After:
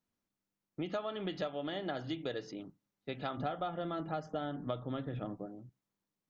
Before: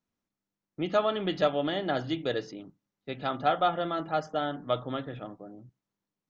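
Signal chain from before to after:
0:03.37–0:05.46: low-shelf EQ 380 Hz +9 dB
downward compressor 6 to 1, threshold −33 dBFS, peak gain reduction 14.5 dB
level −1.5 dB

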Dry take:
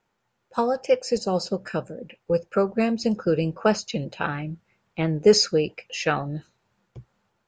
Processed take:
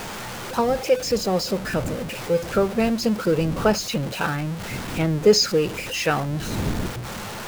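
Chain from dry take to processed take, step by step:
converter with a step at zero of −27 dBFS
wind on the microphone 230 Hz −35 dBFS

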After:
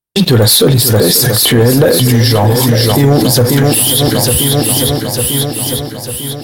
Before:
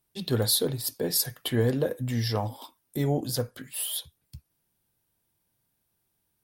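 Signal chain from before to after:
downward expander −50 dBFS
leveller curve on the samples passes 2
feedback echo with a long and a short gap by turns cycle 898 ms, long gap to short 1.5 to 1, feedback 46%, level −10.5 dB
boost into a limiter +27 dB
level −1 dB

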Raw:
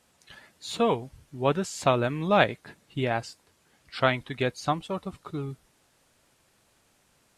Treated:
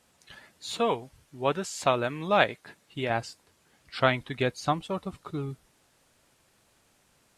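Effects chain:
0:00.74–0:03.10: low-shelf EQ 310 Hz −8 dB

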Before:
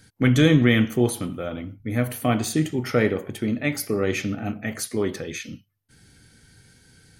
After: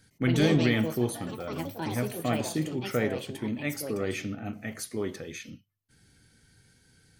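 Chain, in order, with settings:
delay with pitch and tempo change per echo 108 ms, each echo +5 semitones, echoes 3, each echo −6 dB
level −7.5 dB

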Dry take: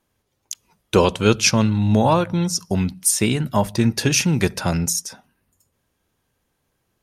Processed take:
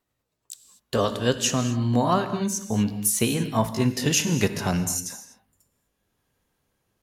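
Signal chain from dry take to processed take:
pitch glide at a constant tempo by +3 semitones ending unshifted
speech leveller 2 s
reverb whose tail is shaped and stops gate 270 ms flat, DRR 9.5 dB
level −4 dB

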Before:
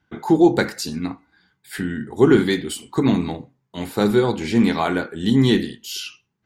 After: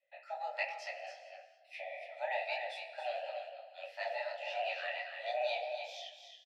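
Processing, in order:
frequency shifter +480 Hz
formant filter e
flat-topped bell 3,800 Hz +8.5 dB
on a send: single-tap delay 281 ms −7.5 dB
on the sum: reverb whose tail is shaped and stops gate 490 ms flat, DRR 11.5 dB
micro pitch shift up and down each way 52 cents
level −3.5 dB

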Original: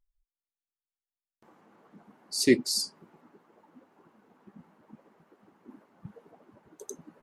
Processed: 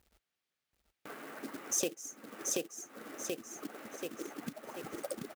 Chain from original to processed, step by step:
low-pass filter 2,400 Hz 12 dB per octave
low-shelf EQ 150 Hz +9.5 dB
wrong playback speed 33 rpm record played at 45 rpm
floating-point word with a short mantissa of 2 bits
high-pass filter 66 Hz
repeating echo 732 ms, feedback 29%, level −5.5 dB
downward compressor 5 to 1, threshold −48 dBFS, peak gain reduction 29.5 dB
spectral tilt +2 dB per octave
notch filter 1,000 Hz, Q 8.7
level +13 dB

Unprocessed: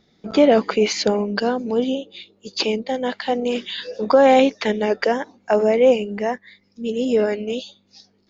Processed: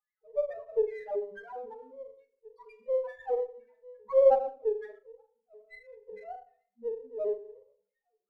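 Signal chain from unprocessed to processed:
adaptive Wiener filter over 15 samples
LFO wah 2.3 Hz 460–2,100 Hz, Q 4.8
spectral peaks only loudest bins 1
dynamic equaliser 350 Hz, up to +5 dB, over −45 dBFS, Q 1.3
convolution reverb RT60 0.55 s, pre-delay 20 ms, DRR 6.5 dB
gain on a spectral selection 0:04.99–0:06.08, 260–2,000 Hz −26 dB
flutter between parallel walls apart 6.9 metres, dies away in 0.22 s
windowed peak hold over 3 samples

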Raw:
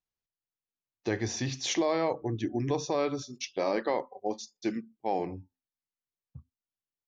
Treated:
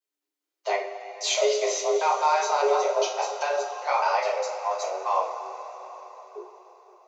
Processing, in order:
slices reordered back to front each 201 ms, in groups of 3
frequency shifter +290 Hz
coupled-rooms reverb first 0.33 s, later 4.8 s, from −18 dB, DRR −5.5 dB

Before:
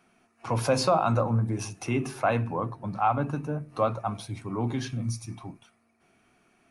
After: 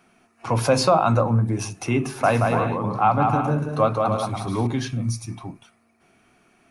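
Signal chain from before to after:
0:02.03–0:04.67: bouncing-ball delay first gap 180 ms, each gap 0.6×, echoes 5
level +5.5 dB

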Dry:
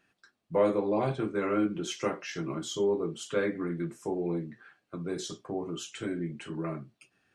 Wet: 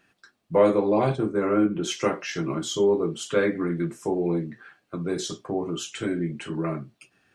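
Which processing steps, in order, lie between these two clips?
0:01.15–0:01.82: parametric band 2,100 Hz → 6,100 Hz −12 dB 1.5 octaves
level +6.5 dB

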